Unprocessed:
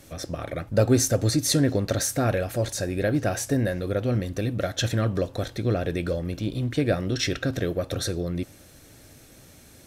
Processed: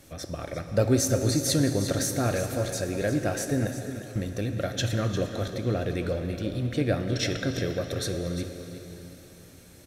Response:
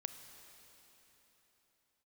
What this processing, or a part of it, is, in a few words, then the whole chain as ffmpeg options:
cave: -filter_complex "[0:a]asettb=1/sr,asplit=3[link_01][link_02][link_03];[link_01]atrim=end=3.674[link_04];[link_02]atrim=start=3.67:end=4.16,asetpts=PTS-STARTPTS,afade=type=in:duration=0.004:curve=qsin,afade=type=out:start_time=0.486:duration=0.004:curve=qsin,aderivative[link_05];[link_03]atrim=start=4.156[link_06];[link_04][link_05]acrossfade=duration=0.004:curve1=hsin:curve2=qsin[link_07];[link_07][link_06]acrossfade=duration=0.004:curve1=qsin:curve2=hsin,aecho=1:1:351:0.266[link_08];[1:a]atrim=start_sample=2205[link_09];[link_08][link_09]afir=irnorm=-1:irlink=0"

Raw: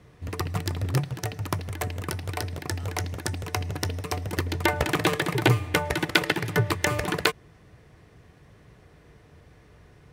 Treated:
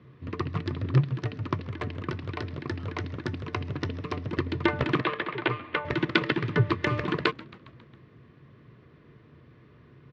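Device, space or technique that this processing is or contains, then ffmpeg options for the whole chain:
frequency-shifting delay pedal into a guitar cabinet: -filter_complex "[0:a]asettb=1/sr,asplit=3[link_01][link_02][link_03];[link_01]atrim=end=5.014[link_04];[link_02]atrim=start=5.01:end=5.85,asetpts=PTS-STARTPTS,afade=type=in:duration=0.004:curve=qsin,afade=type=out:start_time=0.836:duration=0.004:curve=qsin,acrossover=split=430 4100:gain=0.141 1 0.0631[link_05][link_06][link_07];[link_05][link_06][link_07]amix=inputs=3:normalize=0[link_08];[link_03]atrim=start=5.846[link_09];[link_04][link_08]acrossfade=duration=0.004:curve1=hsin:curve2=qsin[link_10];[link_10][link_09]acrossfade=duration=0.004:curve1=qsin:curve2=hsin,asplit=6[link_11][link_12][link_13][link_14][link_15][link_16];[link_12]adelay=136,afreqshift=-130,volume=-21dB[link_17];[link_13]adelay=272,afreqshift=-260,volume=-24.9dB[link_18];[link_14]adelay=408,afreqshift=-390,volume=-28.8dB[link_19];[link_15]adelay=544,afreqshift=-520,volume=-32.6dB[link_20];[link_16]adelay=680,afreqshift=-650,volume=-36.5dB[link_21];[link_11][link_17][link_18][link_19][link_20][link_21]amix=inputs=6:normalize=0,highpass=83,equalizer=frequency=130:width_type=q:width=4:gain=9,equalizer=frequency=240:width_type=q:width=4:gain=9,equalizer=frequency=350:width_type=q:width=4:gain=6,equalizer=frequency=780:width_type=q:width=4:gain=-9,equalizer=frequency=1100:width_type=q:width=4:gain=6,lowpass=frequency=4000:width=0.5412,lowpass=frequency=4000:width=1.3066,volume=-3.5dB"

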